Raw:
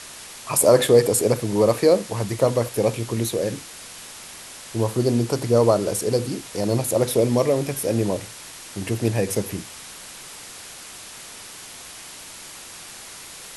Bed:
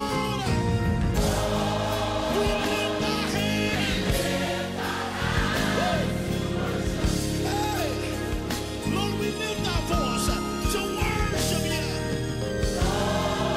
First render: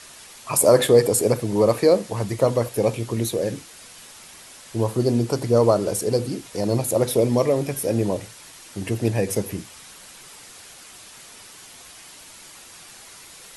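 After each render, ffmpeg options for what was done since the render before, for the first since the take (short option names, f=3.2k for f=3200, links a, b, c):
-af "afftdn=nr=6:nf=-40"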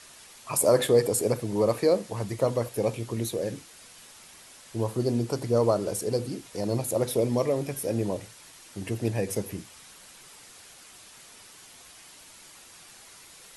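-af "volume=-6dB"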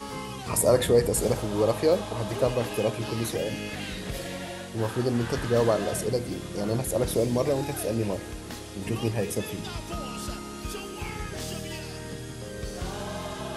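-filter_complex "[1:a]volume=-9.5dB[a];[0:a][a]amix=inputs=2:normalize=0"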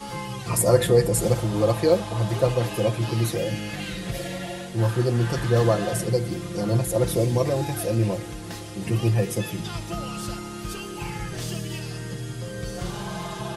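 -af "equalizer=f=110:w=4.1:g=12.5,aecho=1:1:5.8:0.75"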